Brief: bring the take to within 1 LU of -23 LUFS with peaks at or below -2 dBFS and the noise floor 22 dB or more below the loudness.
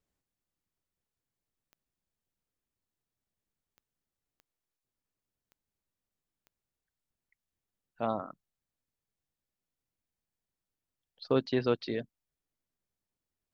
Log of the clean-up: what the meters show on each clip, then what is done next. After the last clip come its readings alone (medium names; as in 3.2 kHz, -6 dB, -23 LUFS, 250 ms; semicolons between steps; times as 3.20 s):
clicks found 5; loudness -32.5 LUFS; peak level -14.5 dBFS; loudness target -23.0 LUFS
-> de-click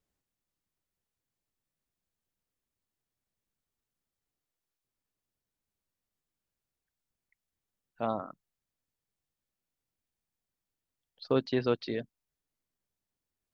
clicks found 0; loudness -32.5 LUFS; peak level -14.5 dBFS; loudness target -23.0 LUFS
-> trim +9.5 dB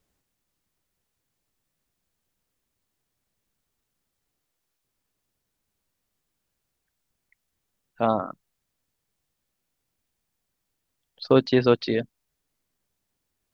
loudness -23.0 LUFS; peak level -5.0 dBFS; noise floor -80 dBFS